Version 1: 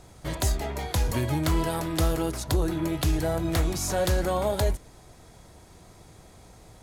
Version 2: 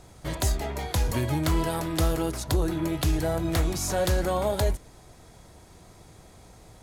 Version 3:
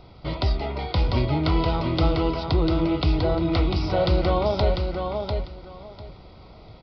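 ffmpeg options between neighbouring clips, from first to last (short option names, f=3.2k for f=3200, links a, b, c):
-af anull
-filter_complex "[0:a]asuperstop=centerf=1700:order=4:qfactor=4,aresample=11025,aresample=44100,asplit=2[a][b];[b]aecho=0:1:697|1394|2091:0.562|0.107|0.0203[c];[a][c]amix=inputs=2:normalize=0,volume=3dB"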